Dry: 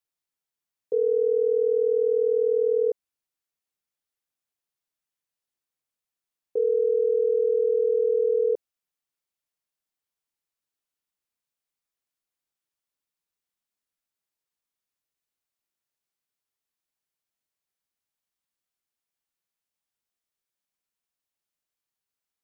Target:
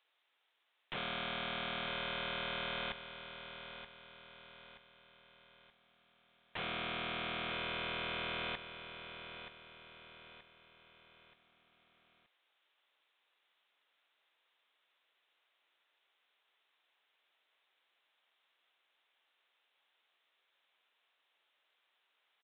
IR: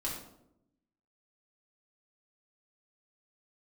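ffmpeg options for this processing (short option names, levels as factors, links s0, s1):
-af "highpass=450,aemphasis=mode=production:type=bsi,acompressor=threshold=0.01:ratio=6,aresample=16000,aeval=exprs='(mod(266*val(0)+1,2)-1)/266':c=same,aresample=44100,aresample=8000,aresample=44100,aecho=1:1:927|1854|2781|3708:0.316|0.133|0.0558|0.0234,volume=6.31"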